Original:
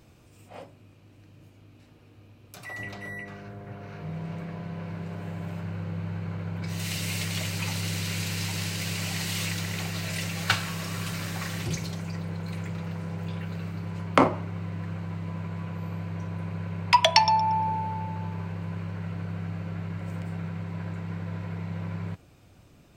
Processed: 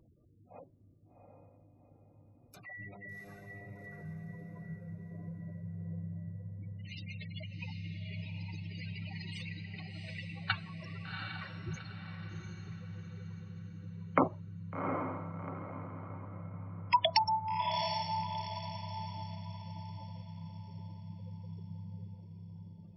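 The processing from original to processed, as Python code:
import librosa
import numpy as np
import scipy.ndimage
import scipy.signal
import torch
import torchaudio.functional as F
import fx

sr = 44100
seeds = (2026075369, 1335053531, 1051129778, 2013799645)

y = fx.spec_gate(x, sr, threshold_db=-15, keep='strong')
y = fx.dereverb_blind(y, sr, rt60_s=0.65)
y = fx.echo_diffused(y, sr, ms=750, feedback_pct=42, wet_db=-4.5)
y = y * librosa.db_to_amplitude(-7.5)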